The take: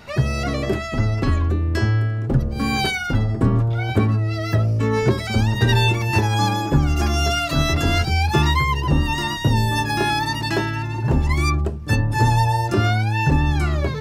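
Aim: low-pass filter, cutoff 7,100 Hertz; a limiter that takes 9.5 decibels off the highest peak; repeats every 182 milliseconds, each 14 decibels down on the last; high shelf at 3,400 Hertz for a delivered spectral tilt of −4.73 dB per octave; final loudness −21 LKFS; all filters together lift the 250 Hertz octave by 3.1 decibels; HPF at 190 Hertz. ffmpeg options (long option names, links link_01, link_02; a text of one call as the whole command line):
ffmpeg -i in.wav -af "highpass=190,lowpass=7100,equalizer=frequency=250:width_type=o:gain=6,highshelf=frequency=3400:gain=6.5,alimiter=limit=-13dB:level=0:latency=1,aecho=1:1:182|364:0.2|0.0399,volume=1.5dB" out.wav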